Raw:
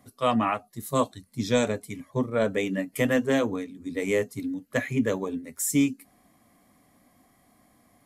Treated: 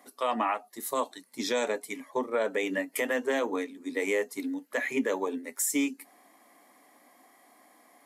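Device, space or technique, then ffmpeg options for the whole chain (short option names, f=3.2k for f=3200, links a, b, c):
laptop speaker: -af "highpass=f=300:w=0.5412,highpass=f=300:w=1.3066,equalizer=f=890:t=o:w=0.33:g=7,equalizer=f=1.9k:t=o:w=0.47:g=4,alimiter=limit=-21.5dB:level=0:latency=1:release=152,volume=3dB"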